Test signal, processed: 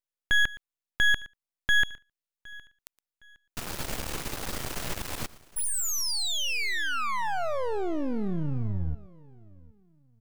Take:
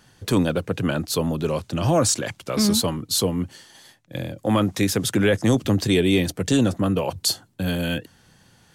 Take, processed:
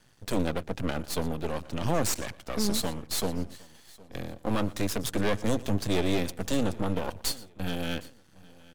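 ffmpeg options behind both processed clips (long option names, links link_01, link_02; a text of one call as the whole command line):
ffmpeg -i in.wav -filter_complex "[0:a]asplit=2[link_01][link_02];[link_02]aecho=0:1:117:0.1[link_03];[link_01][link_03]amix=inputs=2:normalize=0,aeval=exprs='max(val(0),0)':channel_layout=same,asplit=2[link_04][link_05];[link_05]aecho=0:1:763|1526:0.0708|0.0227[link_06];[link_04][link_06]amix=inputs=2:normalize=0,volume=-4dB" out.wav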